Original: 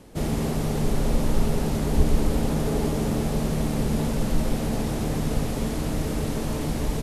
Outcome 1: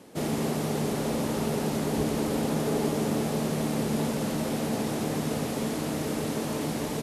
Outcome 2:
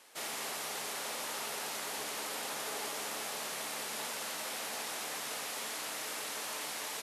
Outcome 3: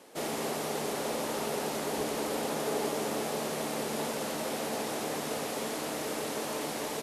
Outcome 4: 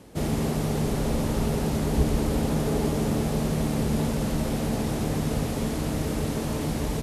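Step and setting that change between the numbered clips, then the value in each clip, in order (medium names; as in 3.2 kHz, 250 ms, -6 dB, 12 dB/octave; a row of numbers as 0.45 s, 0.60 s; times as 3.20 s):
high-pass, cutoff frequency: 180 Hz, 1.2 kHz, 460 Hz, 48 Hz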